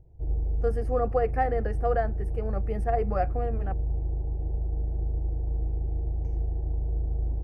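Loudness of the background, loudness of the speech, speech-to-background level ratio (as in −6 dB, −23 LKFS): −31.5 LKFS, −30.0 LKFS, 1.5 dB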